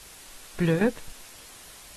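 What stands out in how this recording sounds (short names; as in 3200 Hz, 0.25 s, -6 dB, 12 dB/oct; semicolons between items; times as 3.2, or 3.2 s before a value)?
tremolo saw down 3.7 Hz, depth 75%; a quantiser's noise floor 8-bit, dither triangular; AAC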